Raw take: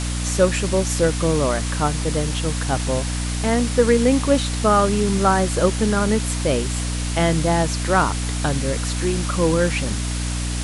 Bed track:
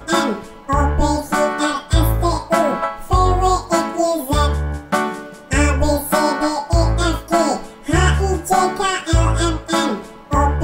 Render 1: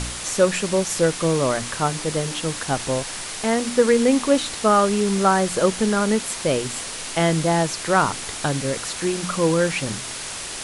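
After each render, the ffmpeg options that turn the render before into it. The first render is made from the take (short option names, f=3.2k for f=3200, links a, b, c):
-af "bandreject=f=60:t=h:w=4,bandreject=f=120:t=h:w=4,bandreject=f=180:t=h:w=4,bandreject=f=240:t=h:w=4,bandreject=f=300:t=h:w=4"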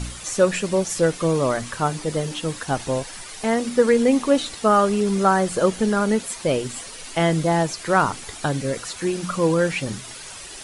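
-af "afftdn=nr=10:nf=-32"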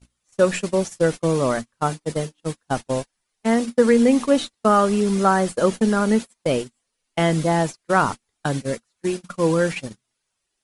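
-af "agate=range=-40dB:threshold=-24dB:ratio=16:detection=peak,equalizer=f=230:w=6.3:g=5"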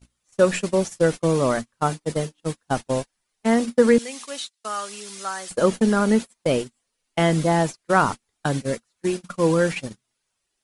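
-filter_complex "[0:a]asettb=1/sr,asplit=3[a][b][c];[a]atrim=end=3.984[d];[b]atrim=start=3.98:end=5.51,asetpts=PTS-STARTPTS,afade=t=in:d=0.004:c=qsin,afade=t=out:st=1.526:d=0.004:c=qsin,bandpass=f=6.9k:t=q:w=0.54[e];[c]atrim=start=5.506[f];[d][e]acrossfade=d=0.004:c1=hsin:c2=qsin[g];[g][f]acrossfade=d=0.004:c1=qsin:c2=hsin"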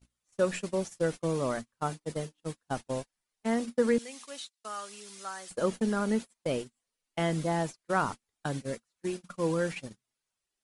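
-af "volume=-10dB"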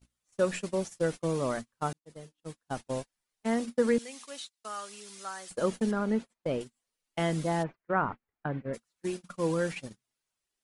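-filter_complex "[0:a]asettb=1/sr,asplit=3[a][b][c];[a]atrim=end=5.914[d];[b]atrim=start=5.91:end=6.61,asetpts=PTS-STARTPTS,afade=t=in:d=0.004:c=qsin,afade=t=out:st=0.696:d=0.004:c=qsin,lowpass=f=2k:p=1[e];[c]atrim=start=6.606[f];[d][e]acrossfade=d=0.004:c1=hsin:c2=qsin[g];[g][f]acrossfade=d=0.004:c1=qsin:c2=hsin,asplit=3[h][i][j];[h]afade=t=out:st=7.62:d=0.02[k];[i]lowpass=f=2.2k:w=0.5412,lowpass=f=2.2k:w=1.3066,afade=t=in:st=7.62:d=0.02,afade=t=out:st=8.73:d=0.02[l];[j]afade=t=in:st=8.73:d=0.02[m];[k][l][m]amix=inputs=3:normalize=0,asplit=2[n][o];[n]atrim=end=1.93,asetpts=PTS-STARTPTS,afade=t=out:st=1.926:d=0.004:c=hsin[p];[o]atrim=start=1.93,asetpts=PTS-STARTPTS,afade=t=in:d=1.02[q];[p][q]concat=n=2:v=0:a=1"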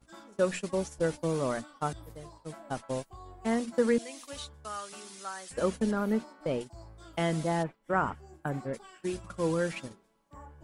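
-filter_complex "[1:a]volume=-34dB[a];[0:a][a]amix=inputs=2:normalize=0"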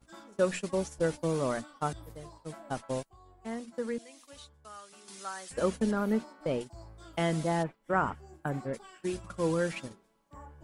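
-filter_complex "[0:a]asplit=3[a][b][c];[a]atrim=end=3.032[d];[b]atrim=start=3.028:end=5.082,asetpts=PTS-STARTPTS,volume=-9dB[e];[c]atrim=start=5.078[f];[d][e]acrossfade=d=0.004:c1=hsin:c2=hsin[g];[g][f]acrossfade=d=0.004:c1=hsin:c2=hsin"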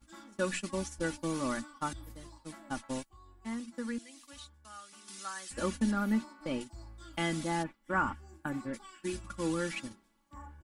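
-af "equalizer=f=560:t=o:w=0.99:g=-11,aecho=1:1:3.5:0.61"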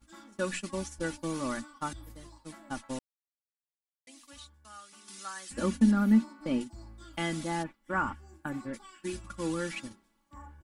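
-filter_complex "[0:a]asettb=1/sr,asplit=3[a][b][c];[a]atrim=end=5.484[d];[b]atrim=start=5.48:end=7.05,asetpts=PTS-STARTPTS,afade=t=in:d=0.004:c=qsin,afade=t=out:st=1.566:d=0.004:c=qsin,equalizer=f=230:w=1.5:g=8[e];[c]atrim=start=7.046[f];[d][e]acrossfade=d=0.004:c1=hsin:c2=qsin[g];[g][f]acrossfade=d=0.004:c1=qsin:c2=hsin,asplit=3[h][i][j];[h]atrim=end=2.99,asetpts=PTS-STARTPTS,afade=t=out:st=2.986:d=0.004:c=hsin[k];[i]atrim=start=2.99:end=4.07,asetpts=PTS-STARTPTS,volume=0[l];[j]atrim=start=4.07,asetpts=PTS-STARTPTS,afade=t=in:d=0.004:c=hsin[m];[k][l][m]concat=n=3:v=0:a=1"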